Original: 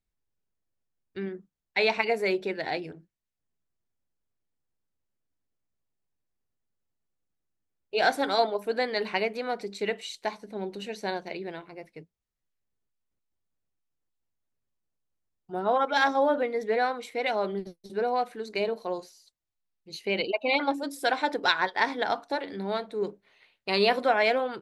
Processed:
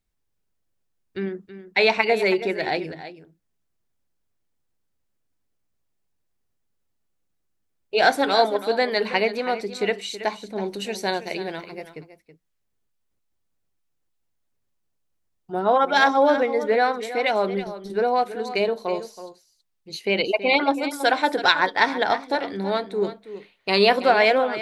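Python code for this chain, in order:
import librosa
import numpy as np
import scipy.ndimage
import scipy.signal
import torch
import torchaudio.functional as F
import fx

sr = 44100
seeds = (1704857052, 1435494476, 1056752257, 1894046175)

y = fx.high_shelf(x, sr, hz=5000.0, db=9.5, at=(10.66, 11.93))
y = y + 10.0 ** (-13.0 / 20.0) * np.pad(y, (int(325 * sr / 1000.0), 0))[:len(y)]
y = F.gain(torch.from_numpy(y), 6.0).numpy()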